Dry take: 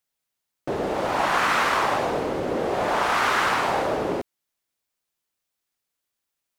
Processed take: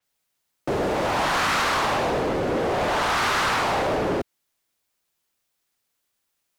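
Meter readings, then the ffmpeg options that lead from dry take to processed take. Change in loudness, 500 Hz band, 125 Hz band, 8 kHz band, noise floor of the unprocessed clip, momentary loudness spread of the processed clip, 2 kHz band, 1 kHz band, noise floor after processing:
+0.5 dB, +1.0 dB, +4.5 dB, +3.0 dB, −83 dBFS, 6 LU, 0.0 dB, −0.5 dB, −77 dBFS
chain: -filter_complex "[0:a]acrossover=split=150|4200[link_01][link_02][link_03];[link_02]asoftclip=type=tanh:threshold=-26.5dB[link_04];[link_01][link_04][link_03]amix=inputs=3:normalize=0,adynamicequalizer=threshold=0.00447:dfrequency=5500:dqfactor=0.7:tfrequency=5500:tqfactor=0.7:attack=5:release=100:ratio=0.375:range=2.5:mode=cutabove:tftype=highshelf,volume=6dB"

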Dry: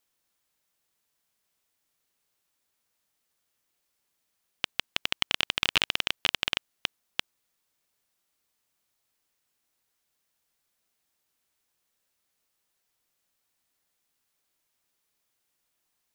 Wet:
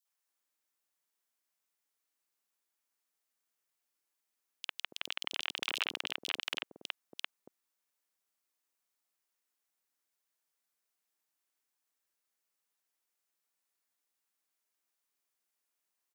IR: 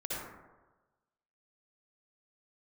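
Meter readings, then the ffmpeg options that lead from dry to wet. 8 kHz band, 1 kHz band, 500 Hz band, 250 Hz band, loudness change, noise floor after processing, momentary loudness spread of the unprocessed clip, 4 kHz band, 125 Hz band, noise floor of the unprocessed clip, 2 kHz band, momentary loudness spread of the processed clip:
−7.5 dB, −8.0 dB, −10.0 dB, −11.5 dB, −9.5 dB, below −85 dBFS, 11 LU, −9.5 dB, −19.5 dB, −79 dBFS, −8.5 dB, 11 LU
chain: -filter_complex "[0:a]highpass=280,acrossover=split=530|3500[link_01][link_02][link_03];[link_02]adelay=50[link_04];[link_01]adelay=280[link_05];[link_05][link_04][link_03]amix=inputs=3:normalize=0,volume=-7dB"

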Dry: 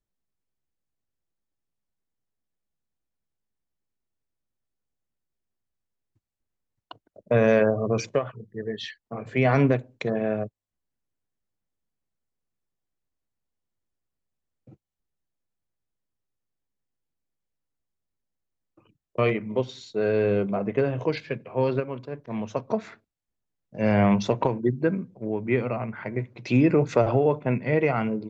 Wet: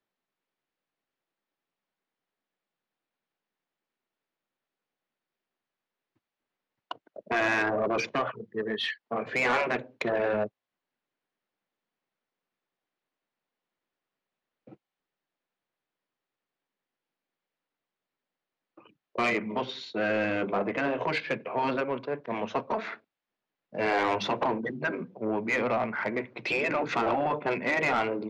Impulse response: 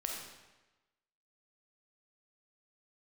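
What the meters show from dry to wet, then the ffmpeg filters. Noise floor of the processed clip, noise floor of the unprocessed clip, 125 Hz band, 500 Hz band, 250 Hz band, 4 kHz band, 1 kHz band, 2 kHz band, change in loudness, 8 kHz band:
below −85 dBFS, −85 dBFS, −15.5 dB, −5.5 dB, −7.5 dB, +4.0 dB, +2.0 dB, +4.0 dB, −4.0 dB, can't be measured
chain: -filter_complex "[0:a]afftfilt=real='re*lt(hypot(re,im),0.355)':imag='im*lt(hypot(re,im),0.355)':win_size=1024:overlap=0.75,acrossover=split=160 4600:gain=0.112 1 0.0891[link_01][link_02][link_03];[link_01][link_02][link_03]amix=inputs=3:normalize=0,aresample=16000,asoftclip=type=tanh:threshold=-25.5dB,aresample=44100,asplit=2[link_04][link_05];[link_05]highpass=frequency=720:poles=1,volume=7dB,asoftclip=type=tanh:threshold=-24dB[link_06];[link_04][link_06]amix=inputs=2:normalize=0,lowpass=frequency=4000:poles=1,volume=-6dB,volume=6dB"

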